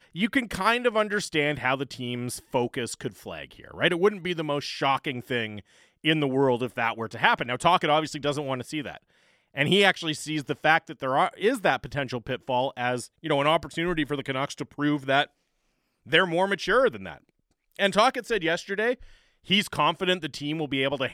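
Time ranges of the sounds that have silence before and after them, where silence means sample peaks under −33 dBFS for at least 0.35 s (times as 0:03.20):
0:06.05–0:08.97
0:09.57–0:15.24
0:16.12–0:17.14
0:17.79–0:18.94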